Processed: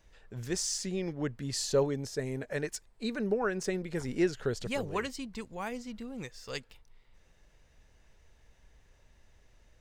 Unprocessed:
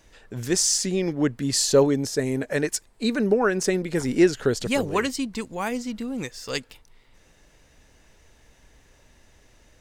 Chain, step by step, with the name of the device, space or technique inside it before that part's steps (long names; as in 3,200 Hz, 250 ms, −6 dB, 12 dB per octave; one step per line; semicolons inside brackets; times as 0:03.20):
low shelf boost with a cut just above (low-shelf EQ 88 Hz +6.5 dB; parametric band 280 Hz −5 dB 0.51 octaves)
parametric band 11,000 Hz −5 dB 1.5 octaves
level −9 dB